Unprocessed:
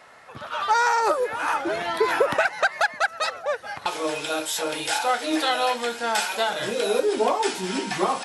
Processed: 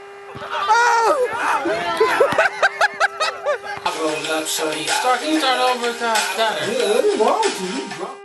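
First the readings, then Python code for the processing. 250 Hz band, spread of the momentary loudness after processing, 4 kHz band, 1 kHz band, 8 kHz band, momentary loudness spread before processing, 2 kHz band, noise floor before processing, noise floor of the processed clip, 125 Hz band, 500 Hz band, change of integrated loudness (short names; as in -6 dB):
+5.0 dB, 8 LU, +5.5 dB, +5.5 dB, +5.5 dB, 7 LU, +5.5 dB, -43 dBFS, -37 dBFS, +4.0 dB, +5.5 dB, +5.5 dB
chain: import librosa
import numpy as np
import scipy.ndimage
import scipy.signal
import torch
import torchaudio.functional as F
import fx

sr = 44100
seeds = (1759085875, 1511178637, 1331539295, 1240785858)

y = fx.fade_out_tail(x, sr, length_s=0.73)
y = fx.dmg_buzz(y, sr, base_hz=400.0, harmonics=7, level_db=-44.0, tilt_db=-6, odd_only=False)
y = y * librosa.db_to_amplitude(5.5)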